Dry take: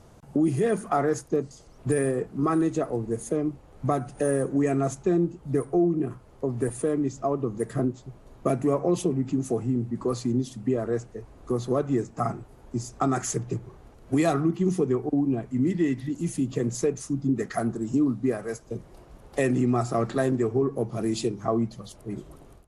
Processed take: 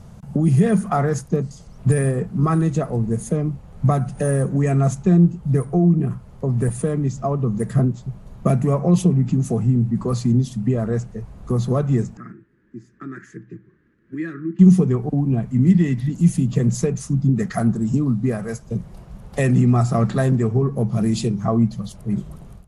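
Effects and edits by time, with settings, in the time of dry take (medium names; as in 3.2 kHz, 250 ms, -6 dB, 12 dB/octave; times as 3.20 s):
12.17–14.59 s: two resonant band-passes 740 Hz, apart 2.4 oct
whole clip: resonant low shelf 240 Hz +6.5 dB, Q 3; trim +4 dB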